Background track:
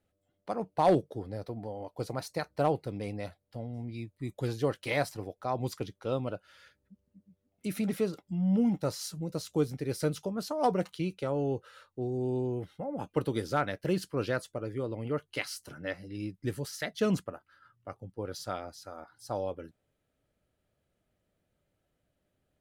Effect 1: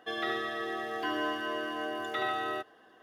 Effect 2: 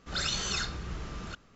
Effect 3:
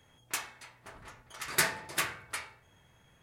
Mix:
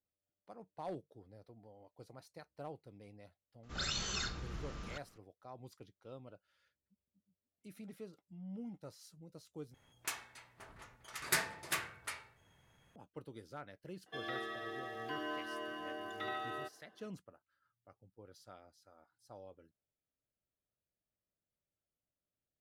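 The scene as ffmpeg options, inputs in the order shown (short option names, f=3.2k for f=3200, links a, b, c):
-filter_complex "[0:a]volume=-19.5dB,asplit=2[a][b];[a]atrim=end=9.744[c];[3:a]atrim=end=3.22,asetpts=PTS-STARTPTS,volume=-5.5dB[d];[b]atrim=start=12.956[e];[2:a]atrim=end=1.55,asetpts=PTS-STARTPTS,volume=-6.5dB,afade=t=in:d=0.004:c=hsin,afade=t=out:st=1.546:d=0.004:c=hsin,adelay=3630[f];[1:a]atrim=end=3.02,asetpts=PTS-STARTPTS,volume=-9dB,afade=t=in:d=0.004:c=hsin,afade=t=out:st=3.016:d=0.004:c=hsin,adelay=14060[g];[c][d]acrossfade=d=0.004:c1=hsin:c2=hsin[h];[h][e]acrossfade=d=0.004:c1=hsin:c2=hsin[i];[i][f][g]amix=inputs=3:normalize=0"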